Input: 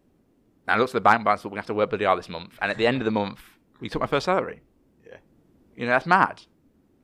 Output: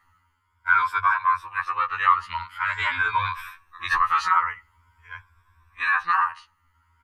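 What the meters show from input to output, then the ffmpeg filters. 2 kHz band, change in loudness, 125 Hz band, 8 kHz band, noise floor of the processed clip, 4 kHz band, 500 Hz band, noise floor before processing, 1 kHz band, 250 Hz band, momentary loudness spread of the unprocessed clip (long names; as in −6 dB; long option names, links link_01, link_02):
+3.5 dB, +0.5 dB, −9.0 dB, can't be measured, −68 dBFS, −2.0 dB, −27.0 dB, −64 dBFS, +2.0 dB, below −25 dB, 14 LU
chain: -filter_complex "[0:a]afftfilt=real='re*pow(10,12/40*sin(2*PI*(1.7*log(max(b,1)*sr/1024/100)/log(2)-(0.46)*(pts-256)/sr)))':imag='im*pow(10,12/40*sin(2*PI*(1.7*log(max(b,1)*sr/1024/100)/log(2)-(0.46)*(pts-256)/sr)))':win_size=1024:overlap=0.75,firequalizer=gain_entry='entry(100,0);entry(170,-29);entry(670,-25);entry(980,13);entry(2600,1);entry(4000,-6);entry(10000,-8)':delay=0.05:min_phase=1,dynaudnorm=framelen=420:gausssize=5:maxgain=5.5dB,highshelf=frequency=2700:gain=4.5,asplit=2[link_01][link_02];[link_02]acompressor=threshold=-25dB:ratio=6,volume=-1dB[link_03];[link_01][link_03]amix=inputs=2:normalize=0,alimiter=level_in=9dB:limit=-1dB:release=50:level=0:latency=1,afftfilt=real='re*2*eq(mod(b,4),0)':imag='im*2*eq(mod(b,4),0)':win_size=2048:overlap=0.75,volume=-6.5dB"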